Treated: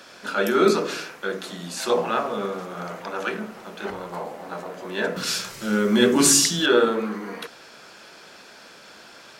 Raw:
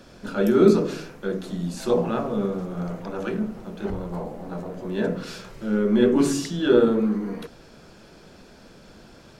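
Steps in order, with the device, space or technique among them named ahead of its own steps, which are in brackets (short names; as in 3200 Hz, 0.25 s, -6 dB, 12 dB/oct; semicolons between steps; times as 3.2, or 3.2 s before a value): 5.16–6.66 tone controls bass +12 dB, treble +11 dB; filter by subtraction (in parallel: LPF 1600 Hz 12 dB/oct + phase invert); on the sum: gain +7 dB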